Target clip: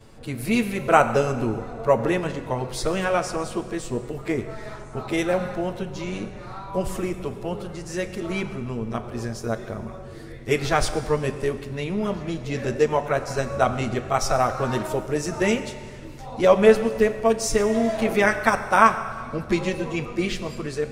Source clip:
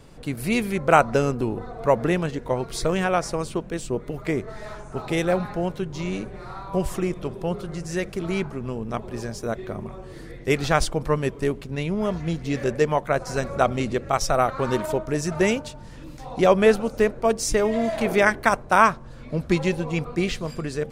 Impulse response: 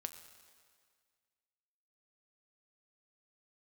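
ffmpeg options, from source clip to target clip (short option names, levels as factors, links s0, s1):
-filter_complex "[0:a]asplit=2[s0][s1];[1:a]atrim=start_sample=2205,adelay=9[s2];[s1][s2]afir=irnorm=-1:irlink=0,volume=3.16[s3];[s0][s3]amix=inputs=2:normalize=0,volume=0.398"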